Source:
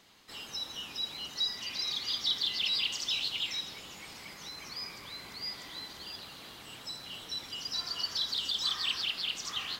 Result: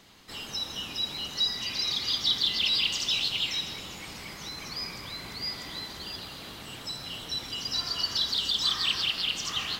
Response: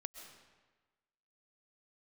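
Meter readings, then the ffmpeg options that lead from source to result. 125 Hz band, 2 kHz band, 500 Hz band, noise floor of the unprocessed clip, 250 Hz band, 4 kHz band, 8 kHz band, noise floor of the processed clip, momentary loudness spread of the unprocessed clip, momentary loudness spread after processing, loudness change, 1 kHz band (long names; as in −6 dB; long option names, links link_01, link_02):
+10.5 dB, +5.0 dB, +6.5 dB, −49 dBFS, +8.5 dB, +5.0 dB, +5.0 dB, −43 dBFS, 15 LU, 14 LU, +5.0 dB, +5.5 dB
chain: -filter_complex "[0:a]asplit=2[link_01][link_02];[1:a]atrim=start_sample=2205,lowshelf=frequency=280:gain=9.5[link_03];[link_02][link_03]afir=irnorm=-1:irlink=0,volume=8dB[link_04];[link_01][link_04]amix=inputs=2:normalize=0,volume=-3.5dB"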